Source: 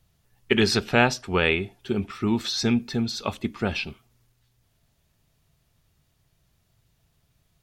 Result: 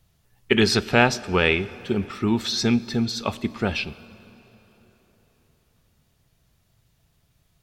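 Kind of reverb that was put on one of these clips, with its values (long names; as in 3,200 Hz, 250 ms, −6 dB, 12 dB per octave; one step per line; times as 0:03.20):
dense smooth reverb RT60 4.2 s, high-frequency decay 0.7×, DRR 18 dB
level +2 dB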